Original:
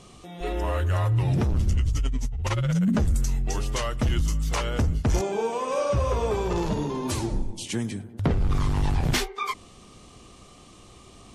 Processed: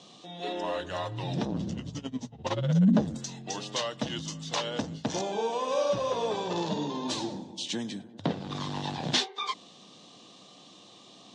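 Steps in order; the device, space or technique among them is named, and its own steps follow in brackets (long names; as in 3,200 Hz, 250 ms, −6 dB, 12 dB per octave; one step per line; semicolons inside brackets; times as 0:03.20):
television speaker (loudspeaker in its box 180–6,600 Hz, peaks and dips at 230 Hz −4 dB, 390 Hz −8 dB, 1,300 Hz −9 dB, 2,200 Hz −8 dB, 3,700 Hz +8 dB)
0:01.45–0:03.19: tilt shelving filter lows +6 dB, about 1,200 Hz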